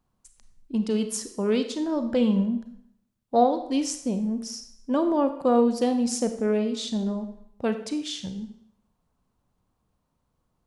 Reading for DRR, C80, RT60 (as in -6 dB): 8.5 dB, 12.5 dB, 0.70 s